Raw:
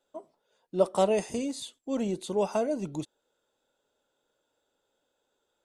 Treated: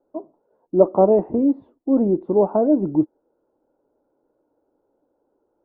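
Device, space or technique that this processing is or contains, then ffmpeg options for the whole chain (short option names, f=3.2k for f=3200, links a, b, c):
under water: -af "lowpass=f=1k:w=0.5412,lowpass=f=1k:w=1.3066,equalizer=f=310:t=o:w=0.58:g=10,volume=8dB"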